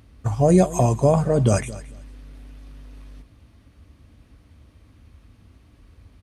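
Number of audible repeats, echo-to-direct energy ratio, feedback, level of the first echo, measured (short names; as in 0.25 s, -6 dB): 2, -17.5 dB, 19%, -17.5 dB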